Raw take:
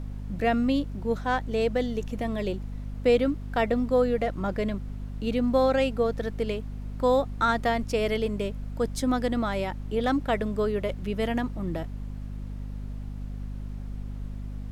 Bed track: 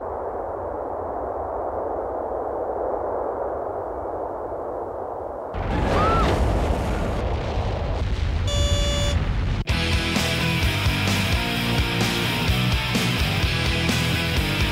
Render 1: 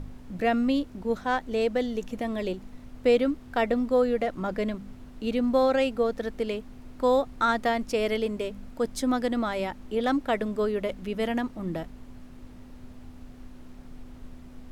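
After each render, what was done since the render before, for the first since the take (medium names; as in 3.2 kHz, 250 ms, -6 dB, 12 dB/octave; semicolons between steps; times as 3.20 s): de-hum 50 Hz, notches 4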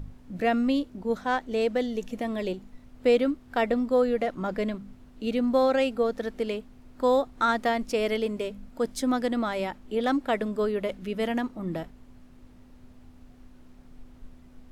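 noise print and reduce 6 dB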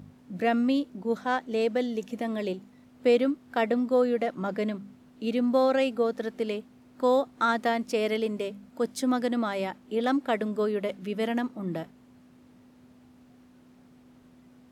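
Chebyshev high-pass 160 Hz, order 2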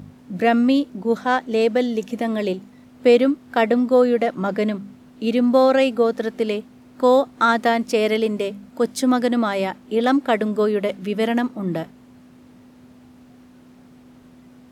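trim +8 dB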